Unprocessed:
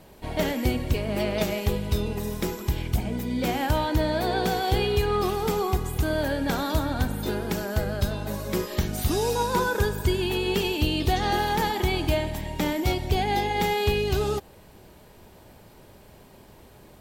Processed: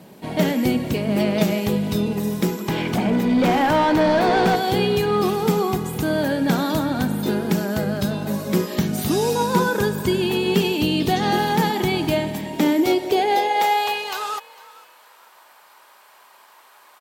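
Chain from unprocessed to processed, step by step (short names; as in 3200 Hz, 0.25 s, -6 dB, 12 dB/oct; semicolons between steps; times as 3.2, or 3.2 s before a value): high-pass sweep 180 Hz -> 1100 Hz, 12.27–14.23; 2.68–4.56 overdrive pedal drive 20 dB, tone 1600 Hz, clips at -13 dBFS; frequency-shifting echo 0.452 s, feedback 31%, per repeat +43 Hz, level -21 dB; gain +3.5 dB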